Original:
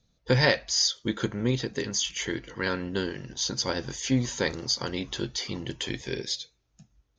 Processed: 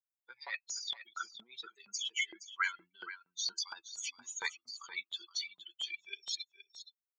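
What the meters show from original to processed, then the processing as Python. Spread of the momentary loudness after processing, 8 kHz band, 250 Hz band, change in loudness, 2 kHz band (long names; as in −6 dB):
13 LU, −10.0 dB, −36.5 dB, −11.0 dB, −7.0 dB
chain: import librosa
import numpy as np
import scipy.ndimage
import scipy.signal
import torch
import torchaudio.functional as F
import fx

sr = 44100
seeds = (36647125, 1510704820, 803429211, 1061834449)

p1 = fx.bin_expand(x, sr, power=3.0)
p2 = scipy.signal.sosfilt(scipy.signal.butter(2, 150.0, 'highpass', fs=sr, output='sos'), p1)
p3 = fx.dynamic_eq(p2, sr, hz=2500.0, q=4.2, threshold_db=-58.0, ratio=4.0, max_db=-5)
p4 = p3 + 0.67 * np.pad(p3, (int(0.9 * sr / 1000.0), 0))[:len(p3)]
p5 = fx.over_compress(p4, sr, threshold_db=-40.0, ratio=-1.0)
p6 = fx.filter_lfo_highpass(p5, sr, shape='saw_up', hz=4.3, low_hz=870.0, high_hz=4400.0, q=1.6)
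p7 = p6 + fx.echo_single(p6, sr, ms=470, db=-13.0, dry=0)
y = F.gain(torch.from_numpy(p7), 1.0).numpy()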